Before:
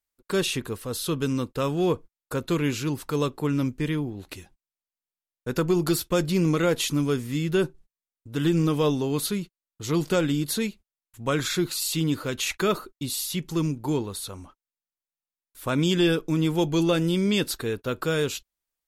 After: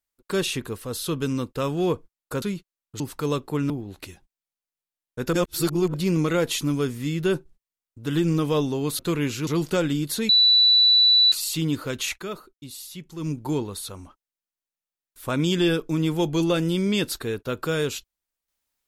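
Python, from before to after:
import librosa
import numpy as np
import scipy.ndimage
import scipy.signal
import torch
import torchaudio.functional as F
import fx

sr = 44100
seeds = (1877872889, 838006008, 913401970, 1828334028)

y = fx.edit(x, sr, fx.swap(start_s=2.42, length_s=0.48, other_s=9.28, other_length_s=0.58),
    fx.cut(start_s=3.6, length_s=0.39),
    fx.reverse_span(start_s=5.62, length_s=0.61),
    fx.bleep(start_s=10.68, length_s=1.03, hz=3960.0, db=-13.0),
    fx.fade_down_up(start_s=12.48, length_s=1.22, db=-9.5, fade_s=0.12), tone=tone)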